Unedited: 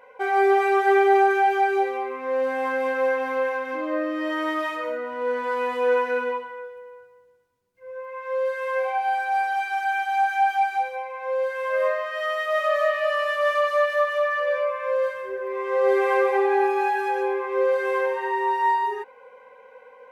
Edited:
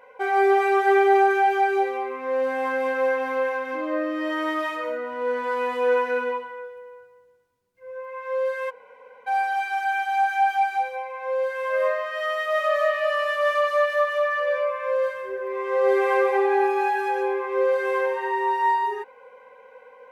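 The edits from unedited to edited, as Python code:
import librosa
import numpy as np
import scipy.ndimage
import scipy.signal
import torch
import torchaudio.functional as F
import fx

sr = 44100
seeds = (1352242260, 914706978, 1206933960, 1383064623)

y = fx.edit(x, sr, fx.room_tone_fill(start_s=8.7, length_s=0.57, crossfade_s=0.02), tone=tone)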